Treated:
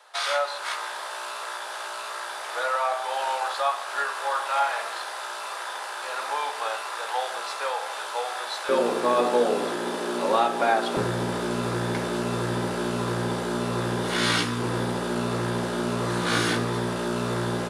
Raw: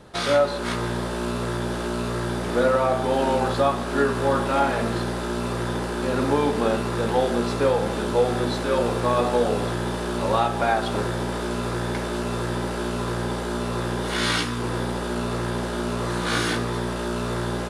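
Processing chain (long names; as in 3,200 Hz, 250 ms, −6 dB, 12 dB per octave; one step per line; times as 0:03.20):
high-pass filter 730 Hz 24 dB per octave, from 0:08.69 240 Hz, from 0:10.97 88 Hz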